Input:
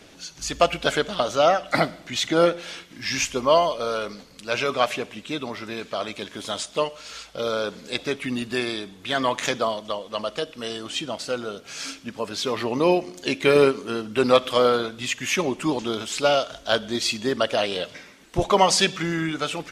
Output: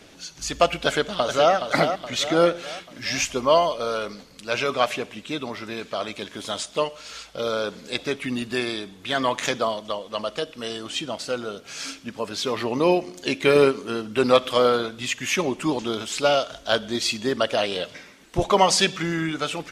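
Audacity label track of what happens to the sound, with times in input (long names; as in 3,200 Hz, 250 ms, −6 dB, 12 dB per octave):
0.860000	1.530000	delay throw 420 ms, feedback 50%, level −7.5 dB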